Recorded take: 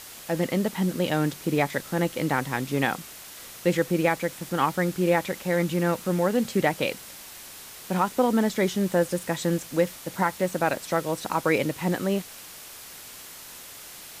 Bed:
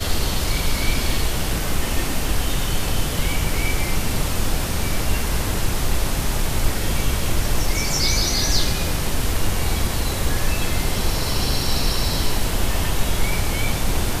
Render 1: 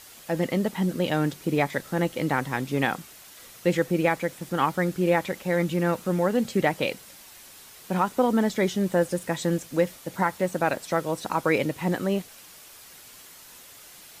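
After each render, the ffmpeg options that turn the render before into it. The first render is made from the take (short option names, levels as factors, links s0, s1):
-af "afftdn=nr=6:nf=-44"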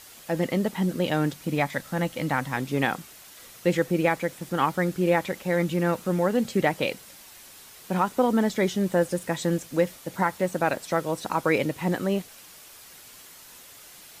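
-filter_complex "[0:a]asettb=1/sr,asplit=3[s0][s1][s2];[s0]atrim=end=1.334[s3];[s1]atrim=start=1.33:end=2.57,asetpts=PTS-STARTPTS,afade=t=in:d=0.004:c=qsin,afade=t=out:st=1.236:d=0.004:c=qsin,equalizer=f=390:w=3.8:g=-11[s4];[s2]atrim=start=2.566[s5];[s3][s4]acrossfade=d=0.004:c1=hsin:c2=qsin[s6];[s6][s5]acrossfade=d=0.004:c1=qsin:c2=hsin"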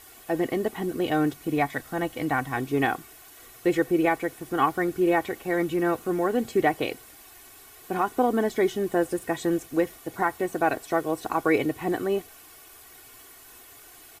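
-af "equalizer=f=4900:t=o:w=1.9:g=-7.5,aecho=1:1:2.7:0.68"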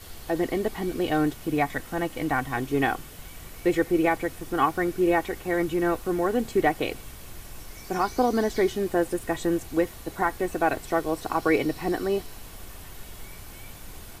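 -filter_complex "[1:a]volume=0.075[s0];[0:a][s0]amix=inputs=2:normalize=0"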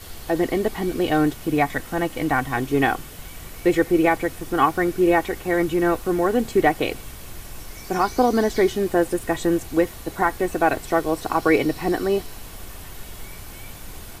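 -af "volume=1.68"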